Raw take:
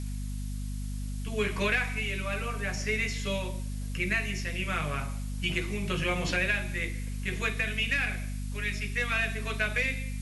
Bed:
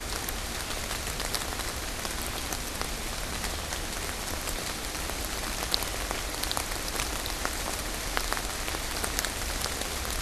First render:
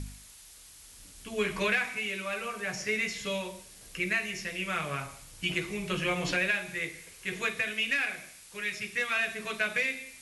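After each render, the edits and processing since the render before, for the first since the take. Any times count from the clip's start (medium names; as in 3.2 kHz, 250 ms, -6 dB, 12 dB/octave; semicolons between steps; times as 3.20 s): de-hum 50 Hz, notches 5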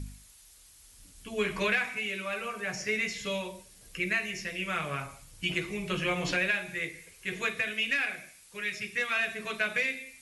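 noise reduction 6 dB, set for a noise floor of -52 dBFS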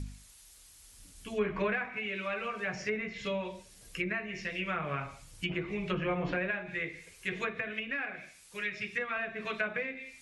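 low-pass that closes with the level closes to 1.4 kHz, closed at -27.5 dBFS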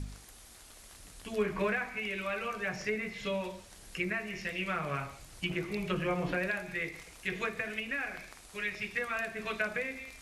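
add bed -23.5 dB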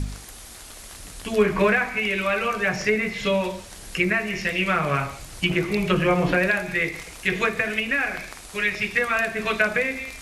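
trim +12 dB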